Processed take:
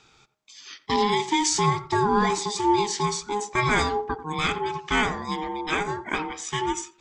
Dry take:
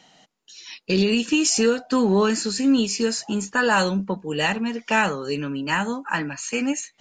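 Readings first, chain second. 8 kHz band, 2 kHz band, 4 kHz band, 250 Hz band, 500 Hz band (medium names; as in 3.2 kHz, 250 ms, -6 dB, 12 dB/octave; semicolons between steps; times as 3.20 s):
-3.0 dB, -3.5 dB, -2.5 dB, -7.5 dB, -4.0 dB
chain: ring modulator 620 Hz; tape echo 89 ms, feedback 28%, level -12 dB, low-pass 1.2 kHz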